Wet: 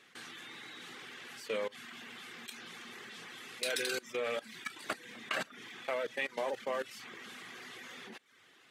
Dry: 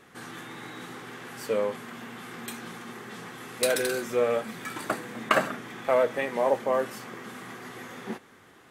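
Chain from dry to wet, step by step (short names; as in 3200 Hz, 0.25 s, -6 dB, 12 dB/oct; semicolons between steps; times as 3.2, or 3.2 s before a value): weighting filter D; level quantiser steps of 14 dB; reverb removal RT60 0.55 s; gain -5.5 dB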